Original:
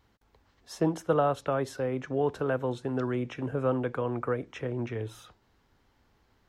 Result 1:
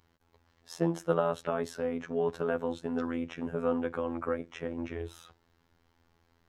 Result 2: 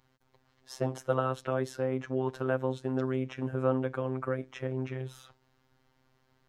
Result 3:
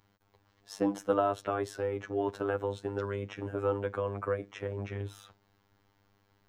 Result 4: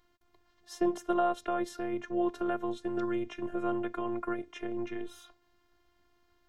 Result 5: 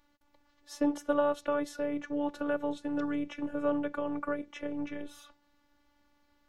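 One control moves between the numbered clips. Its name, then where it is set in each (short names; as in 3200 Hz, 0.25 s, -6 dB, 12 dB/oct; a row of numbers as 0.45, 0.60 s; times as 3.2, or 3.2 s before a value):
robotiser, frequency: 84, 130, 100, 350, 290 Hz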